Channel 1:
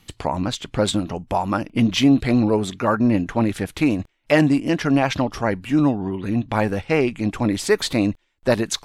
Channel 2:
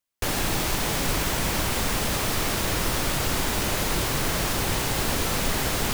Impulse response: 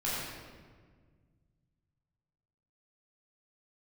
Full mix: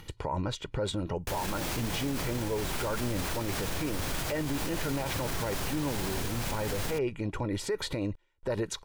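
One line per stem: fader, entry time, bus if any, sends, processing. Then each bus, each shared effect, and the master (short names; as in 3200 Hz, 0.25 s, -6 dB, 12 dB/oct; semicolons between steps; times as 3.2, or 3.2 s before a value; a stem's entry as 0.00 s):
-4.0 dB, 0.00 s, no send, upward compressor, threshold -36 dBFS; high shelf 2100 Hz -8.5 dB; comb 2.1 ms, depth 57%
-6.0 dB, 1.05 s, send -14 dB, dry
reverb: on, RT60 1.6 s, pre-delay 12 ms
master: limiter -23 dBFS, peak gain reduction 15 dB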